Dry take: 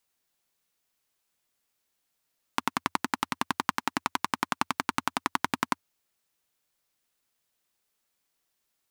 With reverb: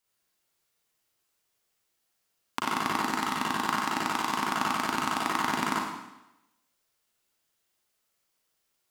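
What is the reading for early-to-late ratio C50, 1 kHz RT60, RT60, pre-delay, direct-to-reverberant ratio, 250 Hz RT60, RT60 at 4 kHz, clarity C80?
-1.0 dB, 0.95 s, 0.95 s, 36 ms, -5.0 dB, 0.90 s, 0.90 s, 3.0 dB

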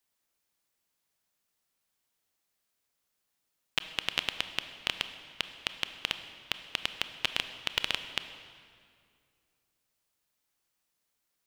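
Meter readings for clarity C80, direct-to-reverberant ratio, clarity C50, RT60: 11.0 dB, 9.5 dB, 10.0 dB, 2.3 s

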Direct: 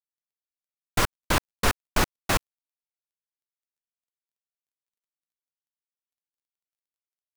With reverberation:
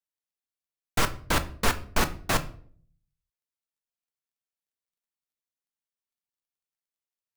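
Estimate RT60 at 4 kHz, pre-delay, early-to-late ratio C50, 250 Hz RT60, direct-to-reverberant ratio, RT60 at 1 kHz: 0.35 s, 4 ms, 16.0 dB, 0.70 s, 8.0 dB, 0.45 s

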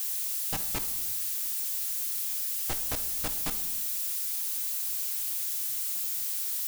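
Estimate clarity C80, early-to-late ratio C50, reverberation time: 15.0 dB, 12.0 dB, 1.0 s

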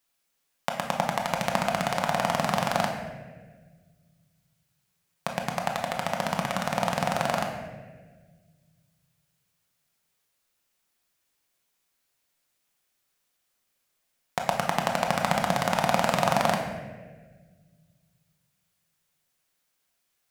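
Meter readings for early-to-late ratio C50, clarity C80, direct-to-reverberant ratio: 5.0 dB, 6.5 dB, 1.0 dB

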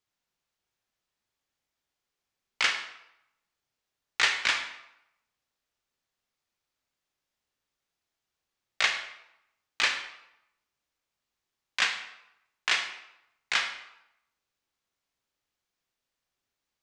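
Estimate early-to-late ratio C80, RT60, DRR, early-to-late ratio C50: 10.0 dB, 0.85 s, 4.0 dB, 7.5 dB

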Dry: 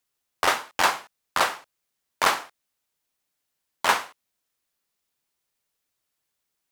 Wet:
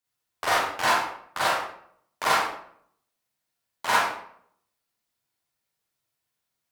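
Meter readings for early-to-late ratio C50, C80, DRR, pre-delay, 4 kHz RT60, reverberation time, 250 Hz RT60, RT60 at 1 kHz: -2.0 dB, 3.5 dB, -9.0 dB, 35 ms, 0.45 s, 0.65 s, 0.70 s, 0.60 s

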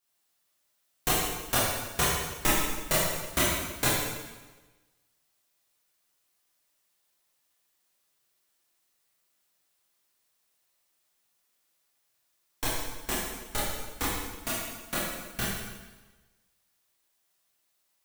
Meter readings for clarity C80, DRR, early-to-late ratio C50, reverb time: 1.5 dB, -9.0 dB, -1.0 dB, 1.2 s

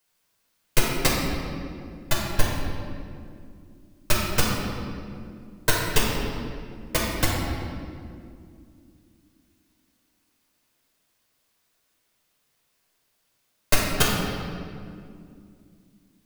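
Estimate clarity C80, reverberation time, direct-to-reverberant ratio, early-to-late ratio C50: 1.5 dB, 2.4 s, -4.5 dB, -0.5 dB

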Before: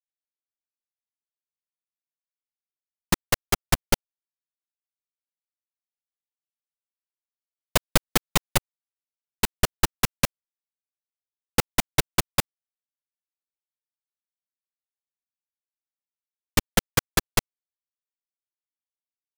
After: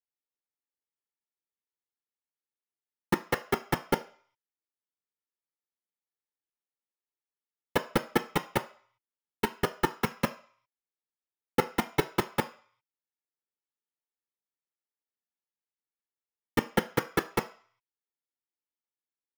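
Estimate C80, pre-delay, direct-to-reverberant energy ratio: 20.5 dB, 3 ms, 7.5 dB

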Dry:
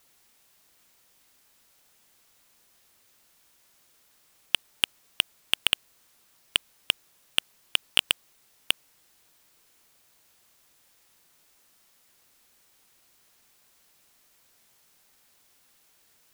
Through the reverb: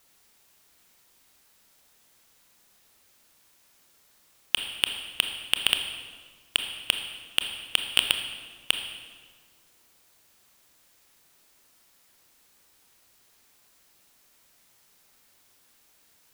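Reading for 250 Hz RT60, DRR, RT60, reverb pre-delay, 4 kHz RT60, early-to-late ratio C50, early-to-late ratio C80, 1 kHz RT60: 1.8 s, 5.0 dB, 1.5 s, 24 ms, 1.2 s, 6.5 dB, 8.0 dB, 1.5 s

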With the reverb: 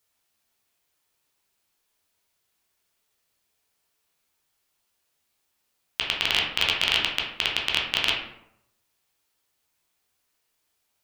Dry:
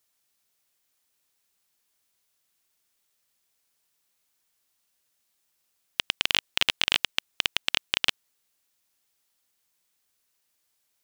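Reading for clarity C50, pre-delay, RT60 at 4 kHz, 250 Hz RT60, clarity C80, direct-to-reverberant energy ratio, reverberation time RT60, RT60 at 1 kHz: 4.0 dB, 10 ms, 0.45 s, 0.75 s, 7.5 dB, -3.0 dB, 0.75 s, 0.75 s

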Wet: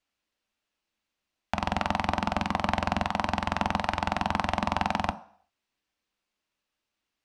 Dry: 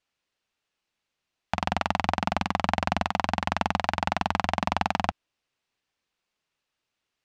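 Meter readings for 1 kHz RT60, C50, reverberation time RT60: 0.55 s, 16.5 dB, 0.55 s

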